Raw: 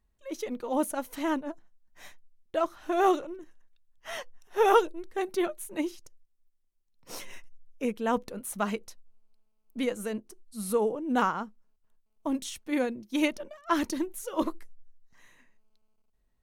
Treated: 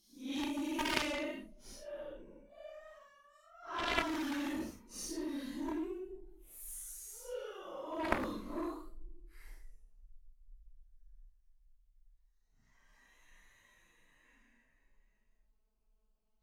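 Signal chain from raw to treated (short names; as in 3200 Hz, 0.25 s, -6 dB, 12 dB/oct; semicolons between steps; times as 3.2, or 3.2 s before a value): Paulstretch 6.2×, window 0.05 s, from 13.09; added harmonics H 3 -6 dB, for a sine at -12 dBFS; gain -1.5 dB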